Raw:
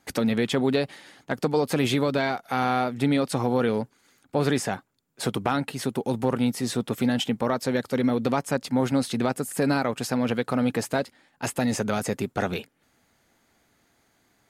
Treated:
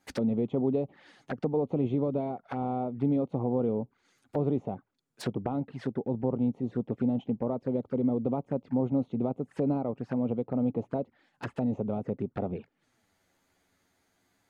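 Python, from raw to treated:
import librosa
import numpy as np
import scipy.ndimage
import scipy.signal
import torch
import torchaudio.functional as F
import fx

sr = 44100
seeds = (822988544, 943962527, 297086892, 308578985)

y = fx.env_lowpass_down(x, sr, base_hz=820.0, full_db=-24.0)
y = fx.env_flanger(y, sr, rest_ms=11.5, full_db=-24.0)
y = y * 10.0 ** (-3.5 / 20.0)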